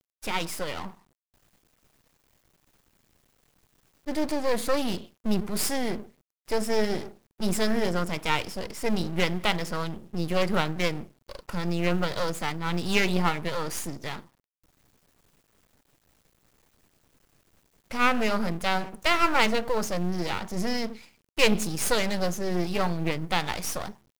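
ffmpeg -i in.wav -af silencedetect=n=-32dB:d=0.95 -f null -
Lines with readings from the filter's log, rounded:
silence_start: 0.88
silence_end: 4.07 | silence_duration: 3.19
silence_start: 14.19
silence_end: 17.91 | silence_duration: 3.72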